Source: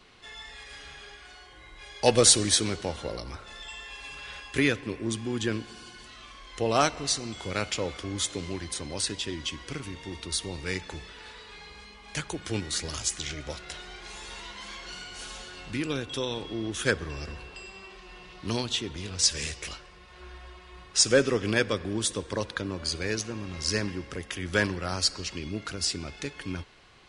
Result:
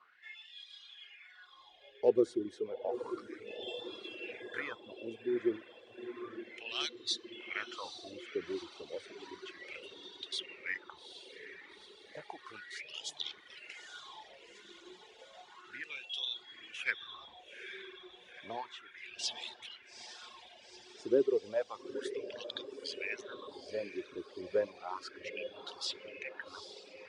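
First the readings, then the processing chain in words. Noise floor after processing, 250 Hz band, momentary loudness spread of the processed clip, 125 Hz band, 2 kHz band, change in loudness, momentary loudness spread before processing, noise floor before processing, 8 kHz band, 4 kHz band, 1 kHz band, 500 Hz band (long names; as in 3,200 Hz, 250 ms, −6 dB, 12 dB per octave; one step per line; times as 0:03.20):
−59 dBFS, −10.0 dB, 18 LU, −27.5 dB, −9.5 dB, −11.0 dB, 20 LU, −50 dBFS, −23.5 dB, −11.0 dB, −12.0 dB, −6.0 dB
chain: LFO wah 0.32 Hz 360–3,600 Hz, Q 6.1
feedback delay with all-pass diffusion 858 ms, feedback 63%, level −8.5 dB
reverb reduction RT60 1.6 s
level +3 dB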